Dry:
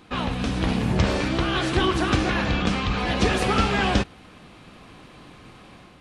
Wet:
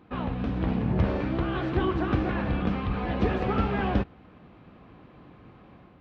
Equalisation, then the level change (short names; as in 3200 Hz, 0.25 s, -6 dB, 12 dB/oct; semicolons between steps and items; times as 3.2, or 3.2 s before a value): HPF 40 Hz; tape spacing loss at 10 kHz 42 dB; -2.0 dB